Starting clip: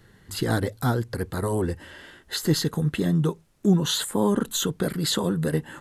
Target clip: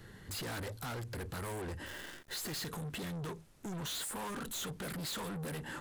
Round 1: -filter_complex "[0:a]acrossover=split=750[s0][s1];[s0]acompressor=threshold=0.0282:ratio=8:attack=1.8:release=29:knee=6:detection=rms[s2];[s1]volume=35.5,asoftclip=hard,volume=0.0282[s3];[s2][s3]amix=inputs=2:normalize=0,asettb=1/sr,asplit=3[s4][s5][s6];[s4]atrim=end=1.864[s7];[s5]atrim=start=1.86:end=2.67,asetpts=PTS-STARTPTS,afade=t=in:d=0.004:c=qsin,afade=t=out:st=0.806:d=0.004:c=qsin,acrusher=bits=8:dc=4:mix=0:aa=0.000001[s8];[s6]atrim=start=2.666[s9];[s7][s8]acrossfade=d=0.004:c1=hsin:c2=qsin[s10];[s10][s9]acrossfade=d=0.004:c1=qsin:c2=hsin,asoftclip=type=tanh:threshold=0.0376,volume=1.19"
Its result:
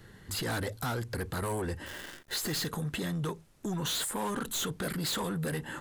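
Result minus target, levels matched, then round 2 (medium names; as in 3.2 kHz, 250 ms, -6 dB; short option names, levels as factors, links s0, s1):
saturation: distortion -9 dB
-filter_complex "[0:a]acrossover=split=750[s0][s1];[s0]acompressor=threshold=0.0282:ratio=8:attack=1.8:release=29:knee=6:detection=rms[s2];[s1]volume=35.5,asoftclip=hard,volume=0.0282[s3];[s2][s3]amix=inputs=2:normalize=0,asettb=1/sr,asplit=3[s4][s5][s6];[s4]atrim=end=1.864[s7];[s5]atrim=start=1.86:end=2.67,asetpts=PTS-STARTPTS,afade=t=in:d=0.004:c=qsin,afade=t=out:st=0.806:d=0.004:c=qsin,acrusher=bits=8:dc=4:mix=0:aa=0.000001[s8];[s6]atrim=start=2.666[s9];[s7][s8]acrossfade=d=0.004:c1=hsin:c2=qsin[s10];[s10][s9]acrossfade=d=0.004:c1=qsin:c2=hsin,asoftclip=type=tanh:threshold=0.01,volume=1.19"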